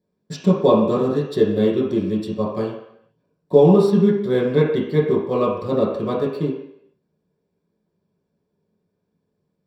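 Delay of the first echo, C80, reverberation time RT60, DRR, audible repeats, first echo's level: none, 6.0 dB, 0.75 s, -6.5 dB, none, none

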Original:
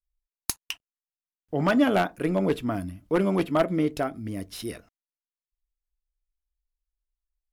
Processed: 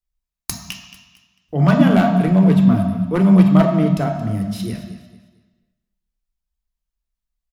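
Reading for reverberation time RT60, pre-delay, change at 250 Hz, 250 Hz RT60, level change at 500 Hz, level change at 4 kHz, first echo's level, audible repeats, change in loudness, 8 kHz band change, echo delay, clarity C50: 1.3 s, 3 ms, +12.5 dB, 1.3 s, +4.5 dB, +4.0 dB, -15.0 dB, 3, +11.5 dB, n/a, 0.224 s, 5.0 dB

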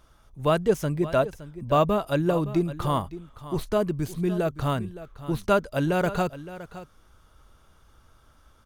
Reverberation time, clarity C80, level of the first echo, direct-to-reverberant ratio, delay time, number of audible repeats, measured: none, none, -15.0 dB, none, 0.566 s, 1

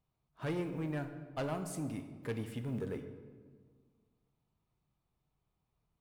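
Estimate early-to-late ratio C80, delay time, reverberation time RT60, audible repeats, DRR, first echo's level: 10.5 dB, none, 1.6 s, none, 7.0 dB, none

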